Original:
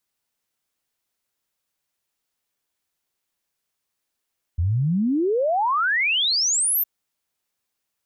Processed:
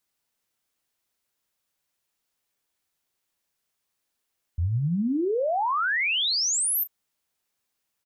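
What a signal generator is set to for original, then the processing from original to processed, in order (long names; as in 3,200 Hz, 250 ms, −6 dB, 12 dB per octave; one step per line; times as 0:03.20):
exponential sine sweep 79 Hz → 14,000 Hz 2.26 s −18 dBFS
brickwall limiter −22 dBFS
double-tracking delay 35 ms −14 dB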